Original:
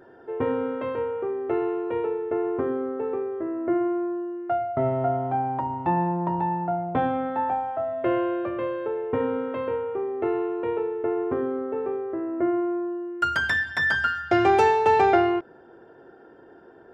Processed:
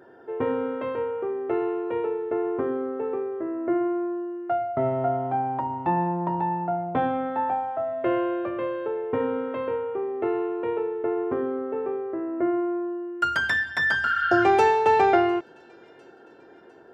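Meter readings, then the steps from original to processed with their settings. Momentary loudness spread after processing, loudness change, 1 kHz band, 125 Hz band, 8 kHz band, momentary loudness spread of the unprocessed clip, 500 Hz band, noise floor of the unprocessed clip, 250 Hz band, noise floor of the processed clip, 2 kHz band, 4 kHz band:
10 LU, 0.0 dB, 0.0 dB, -2.5 dB, no reading, 9 LU, -0.5 dB, -50 dBFS, -0.5 dB, -50 dBFS, +0.5 dB, 0.0 dB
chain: spectral replace 14.08–14.40 s, 1.3–4.5 kHz before; high-pass 120 Hz 6 dB/octave; feedback echo behind a high-pass 703 ms, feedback 52%, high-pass 2.9 kHz, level -23 dB

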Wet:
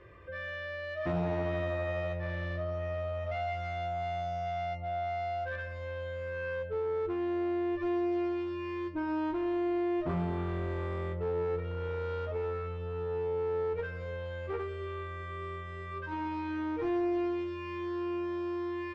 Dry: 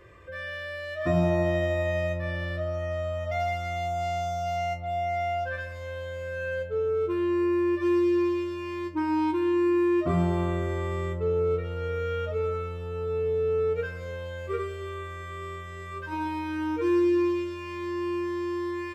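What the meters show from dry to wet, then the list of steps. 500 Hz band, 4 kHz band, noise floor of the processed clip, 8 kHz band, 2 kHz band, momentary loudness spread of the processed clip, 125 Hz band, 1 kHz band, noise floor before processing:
-6.0 dB, -7.0 dB, -40 dBFS, no reading, -5.5 dB, 8 LU, -5.5 dB, -5.0 dB, -38 dBFS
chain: in parallel at -1 dB: compression, threshold -32 dBFS, peak gain reduction 12 dB; on the sum: one-sided clip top -25.5 dBFS; distance through air 170 m; trim -7 dB

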